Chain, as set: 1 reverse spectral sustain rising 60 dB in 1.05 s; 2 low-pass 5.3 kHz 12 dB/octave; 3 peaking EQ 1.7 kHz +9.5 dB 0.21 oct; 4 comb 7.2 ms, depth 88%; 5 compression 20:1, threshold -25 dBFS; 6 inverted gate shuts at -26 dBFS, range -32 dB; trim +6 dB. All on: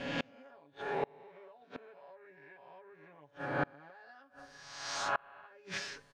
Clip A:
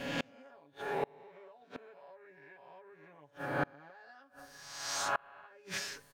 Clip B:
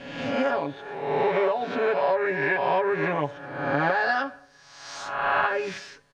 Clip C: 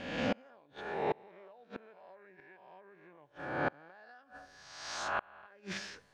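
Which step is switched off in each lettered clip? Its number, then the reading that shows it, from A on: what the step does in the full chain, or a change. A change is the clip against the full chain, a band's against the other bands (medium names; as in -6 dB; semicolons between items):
2, 8 kHz band +5.5 dB; 6, momentary loudness spread change -9 LU; 4, 250 Hz band +3.0 dB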